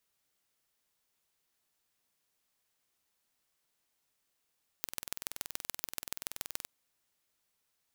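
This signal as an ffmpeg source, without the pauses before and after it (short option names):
-f lavfi -i "aevalsrc='0.447*eq(mod(n,2100),0)*(0.5+0.5*eq(mod(n,6300),0))':d=1.83:s=44100"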